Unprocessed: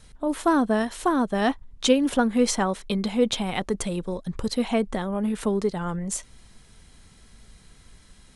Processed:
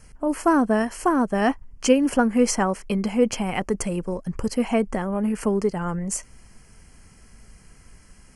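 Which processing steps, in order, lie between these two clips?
Butterworth band-stop 3700 Hz, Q 2.3; gain +2 dB

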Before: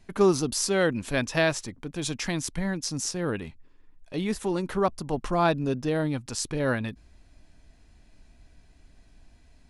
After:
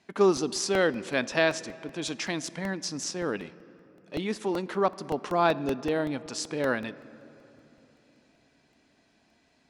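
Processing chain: BPF 240–6500 Hz; on a send at -17 dB: reverb RT60 3.4 s, pre-delay 4 ms; on the sum: crackling interface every 0.19 s, samples 64, repeat, from 0.37

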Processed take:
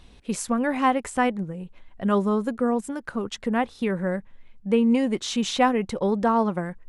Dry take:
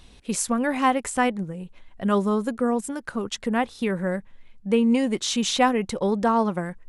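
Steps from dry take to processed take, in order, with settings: high shelf 3800 Hz -7 dB

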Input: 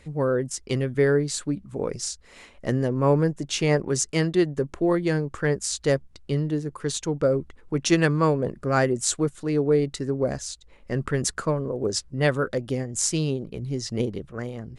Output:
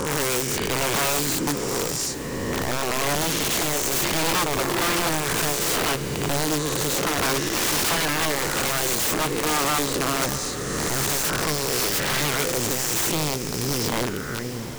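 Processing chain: spectral swells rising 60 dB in 2.30 s; bell 640 Hz -9 dB 0.42 oct; in parallel at +1 dB: limiter -12 dBFS, peak gain reduction 10 dB; on the sum: soft clip -4.5 dBFS, distortion -23 dB; on a send: multi-head echo 0.144 s, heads first and third, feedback 66%, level -23 dB; on the sum: wrapped overs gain 11.5 dB; diffused feedback echo 0.721 s, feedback 48%, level -12 dB; gain -6.5 dB

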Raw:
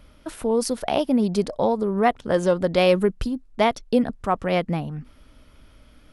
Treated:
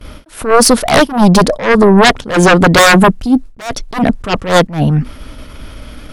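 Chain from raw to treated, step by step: sine folder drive 15 dB, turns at -5 dBFS; gate with hold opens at -23 dBFS; attack slew limiter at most 150 dB/s; gain +2.5 dB

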